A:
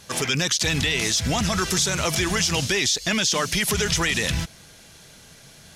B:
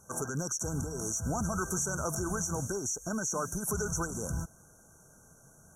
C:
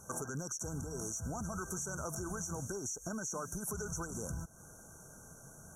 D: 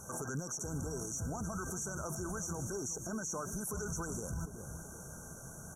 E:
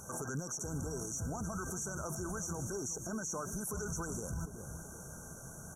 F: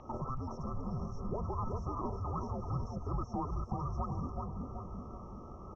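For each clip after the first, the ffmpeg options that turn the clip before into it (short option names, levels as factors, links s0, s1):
-af "afftfilt=real='re*(1-between(b*sr/4096,1600,5600))':imag='im*(1-between(b*sr/4096,1600,5600))':win_size=4096:overlap=0.75,volume=0.376"
-af "acompressor=threshold=0.00708:ratio=4,volume=1.58"
-filter_complex "[0:a]asplit=2[s0][s1];[s1]adelay=377,lowpass=f=970:p=1,volume=0.237,asplit=2[s2][s3];[s3]adelay=377,lowpass=f=970:p=1,volume=0.52,asplit=2[s4][s5];[s5]adelay=377,lowpass=f=970:p=1,volume=0.52,asplit=2[s6][s7];[s7]adelay=377,lowpass=f=970:p=1,volume=0.52,asplit=2[s8][s9];[s9]adelay=377,lowpass=f=970:p=1,volume=0.52[s10];[s0][s2][s4][s6][s8][s10]amix=inputs=6:normalize=0,alimiter=level_in=3.76:limit=0.0631:level=0:latency=1:release=31,volume=0.266,volume=1.78"
-af "acompressor=mode=upward:threshold=0.00112:ratio=2.5"
-filter_complex "[0:a]highpass=f=190:t=q:w=0.5412,highpass=f=190:t=q:w=1.307,lowpass=f=3600:t=q:w=0.5176,lowpass=f=3600:t=q:w=0.7071,lowpass=f=3600:t=q:w=1.932,afreqshift=-270,asplit=2[s0][s1];[s1]adelay=381,lowpass=f=1500:p=1,volume=0.631,asplit=2[s2][s3];[s3]adelay=381,lowpass=f=1500:p=1,volume=0.49,asplit=2[s4][s5];[s5]adelay=381,lowpass=f=1500:p=1,volume=0.49,asplit=2[s6][s7];[s7]adelay=381,lowpass=f=1500:p=1,volume=0.49,asplit=2[s8][s9];[s9]adelay=381,lowpass=f=1500:p=1,volume=0.49,asplit=2[s10][s11];[s11]adelay=381,lowpass=f=1500:p=1,volume=0.49[s12];[s0][s2][s4][s6][s8][s10][s12]amix=inputs=7:normalize=0,volume=1.68"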